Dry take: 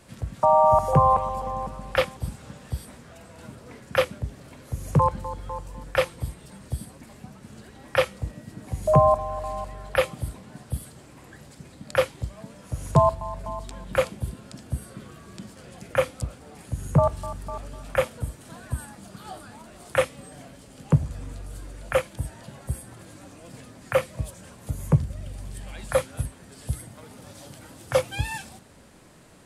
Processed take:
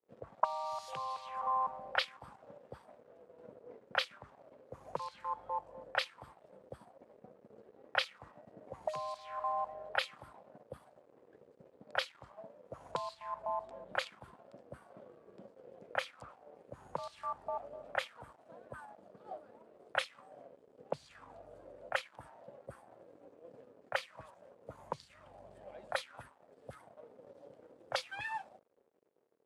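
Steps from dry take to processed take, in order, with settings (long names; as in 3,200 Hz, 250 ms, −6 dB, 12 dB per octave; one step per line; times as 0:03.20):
pitch vibrato 0.42 Hz 5.8 cents
dead-zone distortion −48 dBFS
envelope filter 440–4,300 Hz, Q 3.6, up, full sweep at −17.5 dBFS
level +3 dB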